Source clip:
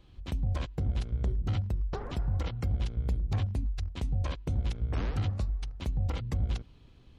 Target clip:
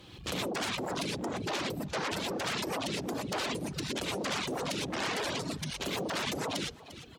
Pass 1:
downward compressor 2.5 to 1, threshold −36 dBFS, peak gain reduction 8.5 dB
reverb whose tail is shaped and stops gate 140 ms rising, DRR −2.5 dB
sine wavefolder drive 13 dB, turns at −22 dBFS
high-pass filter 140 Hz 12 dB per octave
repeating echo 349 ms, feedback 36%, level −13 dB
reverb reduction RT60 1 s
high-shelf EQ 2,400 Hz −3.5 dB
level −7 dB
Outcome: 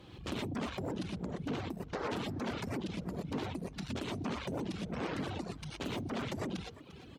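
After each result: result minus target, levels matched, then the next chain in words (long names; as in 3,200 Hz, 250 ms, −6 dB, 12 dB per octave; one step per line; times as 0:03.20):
downward compressor: peak gain reduction +8.5 dB; 4,000 Hz band −6.0 dB
reverb whose tail is shaped and stops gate 140 ms rising, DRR −2.5 dB
sine wavefolder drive 13 dB, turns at −22 dBFS
high-pass filter 140 Hz 12 dB per octave
repeating echo 349 ms, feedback 36%, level −13 dB
reverb reduction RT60 1 s
high-shelf EQ 2,400 Hz −3.5 dB
level −7 dB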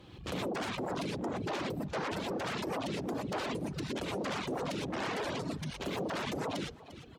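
4,000 Hz band −4.5 dB
reverb whose tail is shaped and stops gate 140 ms rising, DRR −2.5 dB
sine wavefolder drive 13 dB, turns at −22 dBFS
high-pass filter 140 Hz 12 dB per octave
repeating echo 349 ms, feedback 36%, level −13 dB
reverb reduction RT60 1 s
high-shelf EQ 2,400 Hz +6.5 dB
level −7 dB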